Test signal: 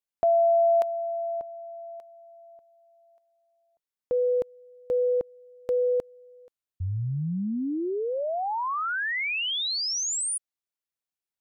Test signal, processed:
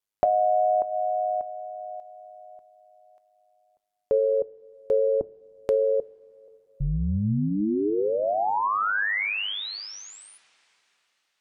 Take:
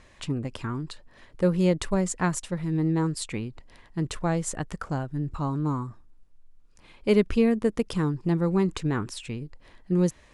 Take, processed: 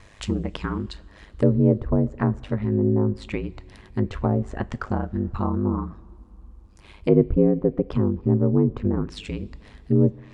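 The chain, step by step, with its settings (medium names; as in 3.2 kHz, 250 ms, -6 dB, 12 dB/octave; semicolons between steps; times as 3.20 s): low-pass that closes with the level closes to 570 Hz, closed at -21.5 dBFS; ring modulator 51 Hz; two-slope reverb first 0.27 s, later 3.8 s, from -19 dB, DRR 15 dB; trim +7 dB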